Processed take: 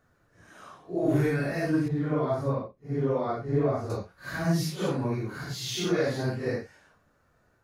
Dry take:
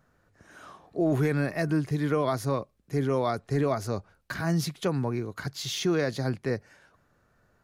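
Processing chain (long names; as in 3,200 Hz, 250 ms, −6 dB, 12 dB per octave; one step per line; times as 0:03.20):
random phases in long frames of 200 ms
0:01.88–0:03.90: low-pass filter 1,100 Hz 6 dB per octave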